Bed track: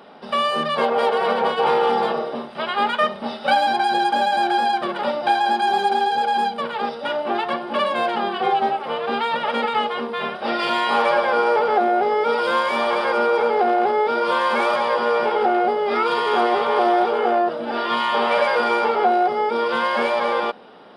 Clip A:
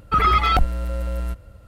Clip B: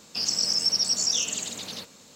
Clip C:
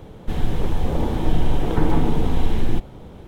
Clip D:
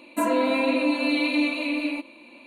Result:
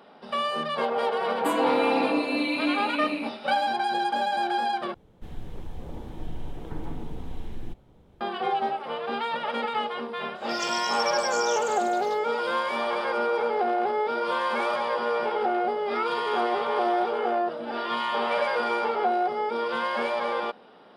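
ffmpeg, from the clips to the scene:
ffmpeg -i bed.wav -i cue0.wav -i cue1.wav -i cue2.wav -i cue3.wav -filter_complex "[0:a]volume=-7dB,asplit=2[link_01][link_02];[link_01]atrim=end=4.944[link_03];[3:a]atrim=end=3.27,asetpts=PTS-STARTPTS,volume=-16.5dB[link_04];[link_02]atrim=start=8.206[link_05];[4:a]atrim=end=2.46,asetpts=PTS-STARTPTS,volume=-3.5dB,afade=type=in:duration=0.004:curve=hsin,afade=type=out:start_time=2.456:duration=0.004:curve=hsin,adelay=1280[link_06];[2:a]atrim=end=2.15,asetpts=PTS-STARTPTS,volume=-9.5dB,afade=type=in:duration=0.1,afade=type=out:start_time=2.05:duration=0.1,adelay=455994S[link_07];[link_03][link_04]acrossfade=duration=0.004:curve1=hsin:curve2=hsin[link_08];[link_08][link_05]acrossfade=duration=0.004:curve1=hsin:curve2=hsin[link_09];[link_09][link_06][link_07]amix=inputs=3:normalize=0" out.wav

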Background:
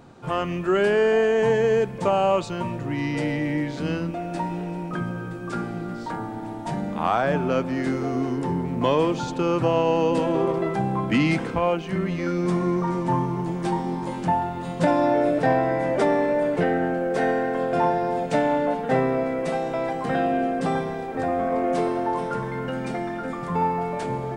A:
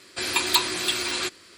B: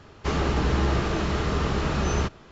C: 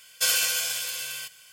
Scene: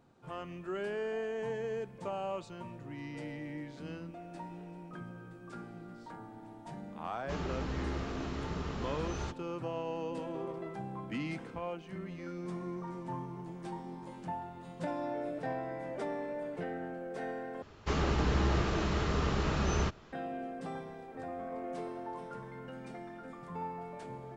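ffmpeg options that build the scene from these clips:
ffmpeg -i bed.wav -i cue0.wav -i cue1.wav -filter_complex "[2:a]asplit=2[link_01][link_02];[0:a]volume=-17dB,asplit=2[link_03][link_04];[link_03]atrim=end=17.624[link_05];[link_02]atrim=end=2.51,asetpts=PTS-STARTPTS,volume=-6dB[link_06];[link_04]atrim=start=20.126[link_07];[link_01]atrim=end=2.51,asetpts=PTS-STARTPTS,volume=-14dB,afade=type=in:duration=0.004:curve=hsin,afade=type=out:start_time=2.506:duration=0.004:curve=hsin,adelay=7040[link_08];[link_05][link_06]acrossfade=duration=0.004:curve1=hsin:curve2=hsin[link_09];[link_09][link_07]acrossfade=duration=0.004:curve1=hsin:curve2=hsin[link_10];[link_10][link_08]amix=inputs=2:normalize=0" out.wav

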